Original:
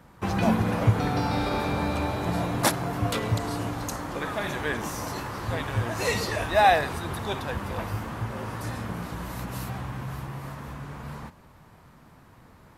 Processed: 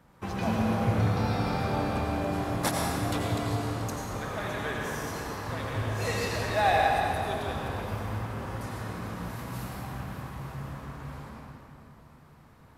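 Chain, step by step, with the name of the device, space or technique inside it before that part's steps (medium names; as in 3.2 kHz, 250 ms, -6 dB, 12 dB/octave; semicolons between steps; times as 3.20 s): stairwell (reverberation RT60 2.7 s, pre-delay 78 ms, DRR -2 dB); trim -7 dB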